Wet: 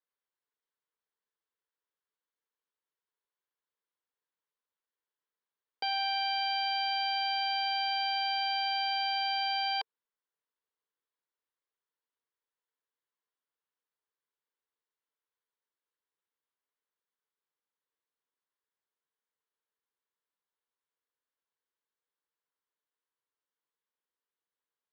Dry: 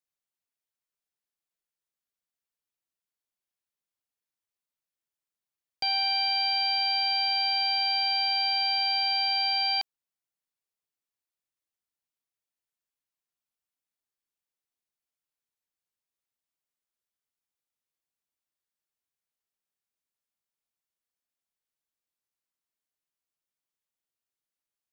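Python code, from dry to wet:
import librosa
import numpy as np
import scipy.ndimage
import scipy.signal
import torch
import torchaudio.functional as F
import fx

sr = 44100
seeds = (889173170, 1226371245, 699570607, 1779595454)

y = fx.cabinet(x, sr, low_hz=320.0, low_slope=12, high_hz=3700.0, hz=(450.0, 690.0, 1000.0, 1600.0, 2500.0), db=(8, -6, 6, 3, -7))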